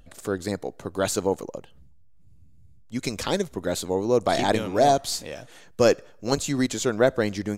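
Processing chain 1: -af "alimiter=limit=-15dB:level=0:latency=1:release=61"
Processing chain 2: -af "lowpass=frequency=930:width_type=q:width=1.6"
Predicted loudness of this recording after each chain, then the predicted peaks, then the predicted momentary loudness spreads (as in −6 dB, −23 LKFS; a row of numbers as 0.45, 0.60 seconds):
−28.5, −23.0 LKFS; −15.0, −4.5 dBFS; 9, 19 LU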